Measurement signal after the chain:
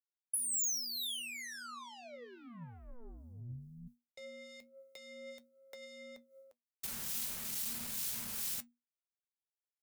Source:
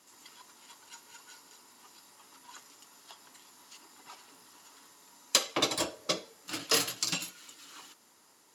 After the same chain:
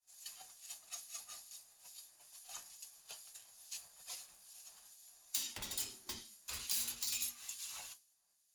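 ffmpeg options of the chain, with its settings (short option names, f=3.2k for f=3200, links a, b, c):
-filter_complex "[0:a]aeval=exprs='(tanh(56.2*val(0)+0.15)-tanh(0.15))/56.2':c=same,lowshelf=f=420:g=-6,acrossover=split=250[a][b];[b]acompressor=threshold=-45dB:ratio=6[c];[a][c]amix=inputs=2:normalize=0,flanger=delay=7:depth=3.4:regen=66:speed=0.36:shape=triangular,agate=range=-33dB:threshold=-54dB:ratio=3:detection=peak,afreqshift=-240,crystalizer=i=6:c=0,acrossover=split=2200[d][e];[d]aeval=exprs='val(0)*(1-0.5/2+0.5/2*cos(2*PI*2.3*n/s))':c=same[f];[e]aeval=exprs='val(0)*(1-0.5/2-0.5/2*cos(2*PI*2.3*n/s))':c=same[g];[f][g]amix=inputs=2:normalize=0"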